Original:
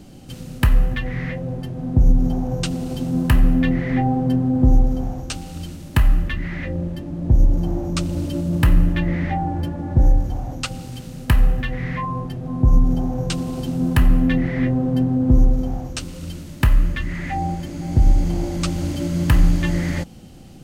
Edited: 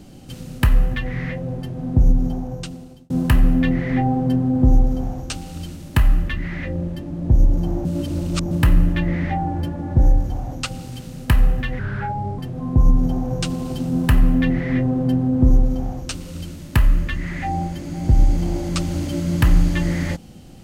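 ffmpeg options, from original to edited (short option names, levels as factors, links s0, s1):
-filter_complex "[0:a]asplit=6[s0][s1][s2][s3][s4][s5];[s0]atrim=end=3.1,asetpts=PTS-STARTPTS,afade=t=out:st=2.01:d=1.09[s6];[s1]atrim=start=3.1:end=7.852,asetpts=PTS-STARTPTS,afade=t=in:d=0.004:c=hsin[s7];[s2]atrim=start=7.848:end=8.512,asetpts=PTS-STARTPTS,areverse[s8];[s3]atrim=start=8.508:end=11.794[s9];[s4]atrim=start=11.79:end=12.26,asetpts=PTS-STARTPTS,asetrate=34839,aresample=44100[s10];[s5]atrim=start=12.256[s11];[s6][s7]concat=n=2:v=0:a=1[s12];[s12][s8]acrossfade=d=0.004:c1=hsin:c2=hsin[s13];[s13][s9]acrossfade=d=0.004:c1=hsin:c2=hsin[s14];[s14][s10]acrossfade=d=0.004:c1=hsin:c2=hsin[s15];[s15][s11]acrossfade=d=0.004:c1=hsin:c2=hsin"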